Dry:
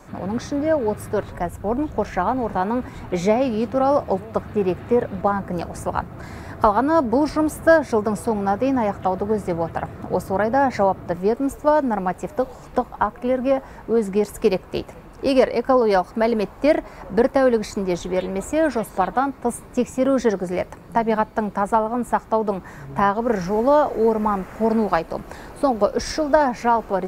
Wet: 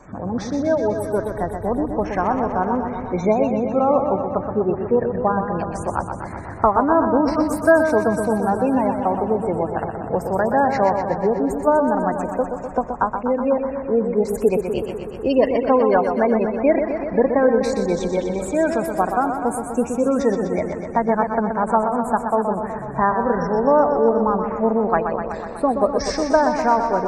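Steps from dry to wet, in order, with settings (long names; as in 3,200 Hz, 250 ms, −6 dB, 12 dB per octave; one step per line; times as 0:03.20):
gate on every frequency bin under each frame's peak −25 dB strong
feedback echo with a swinging delay time 124 ms, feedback 72%, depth 54 cents, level −7 dB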